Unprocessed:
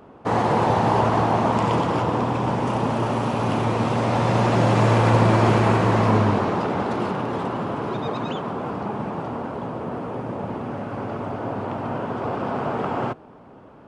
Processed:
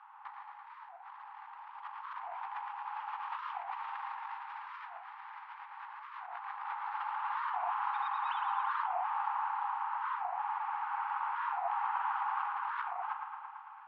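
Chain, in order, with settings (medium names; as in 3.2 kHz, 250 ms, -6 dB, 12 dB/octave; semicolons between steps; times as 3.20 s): one-sided wavefolder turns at -16 dBFS; Chebyshev high-pass 800 Hz, order 10; treble shelf 3.9 kHz -12 dB; compressor with a negative ratio -35 dBFS, ratio -0.5; distance through air 350 m; feedback echo behind a low-pass 112 ms, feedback 73%, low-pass 3.5 kHz, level -5.5 dB; warped record 45 rpm, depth 250 cents; trim -3 dB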